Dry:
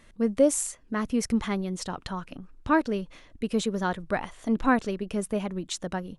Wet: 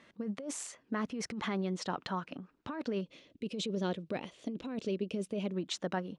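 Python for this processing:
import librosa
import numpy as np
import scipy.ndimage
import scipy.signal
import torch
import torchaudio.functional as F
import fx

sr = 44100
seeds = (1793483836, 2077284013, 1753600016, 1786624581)

y = fx.band_shelf(x, sr, hz=1200.0, db=-12.0, octaves=1.7, at=(3.01, 5.54))
y = fx.over_compress(y, sr, threshold_db=-29.0, ratio=-1.0)
y = fx.bandpass_edges(y, sr, low_hz=180.0, high_hz=4800.0)
y = y * librosa.db_to_amplitude(-4.0)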